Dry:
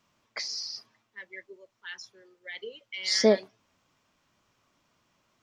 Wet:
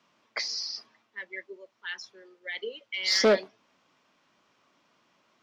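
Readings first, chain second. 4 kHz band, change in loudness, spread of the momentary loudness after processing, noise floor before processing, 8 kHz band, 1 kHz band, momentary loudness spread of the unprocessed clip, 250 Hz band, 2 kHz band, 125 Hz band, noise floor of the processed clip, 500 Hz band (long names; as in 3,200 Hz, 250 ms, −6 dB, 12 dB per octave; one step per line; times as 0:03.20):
+2.0 dB, −1.0 dB, 21 LU, −76 dBFS, −0.5 dB, +4.0 dB, 22 LU, −3.0 dB, +4.5 dB, can't be measured, −72 dBFS, 0.0 dB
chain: gain into a clipping stage and back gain 20 dB
three-way crossover with the lows and the highs turned down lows −19 dB, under 170 Hz, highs −14 dB, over 5,900 Hz
level +4.5 dB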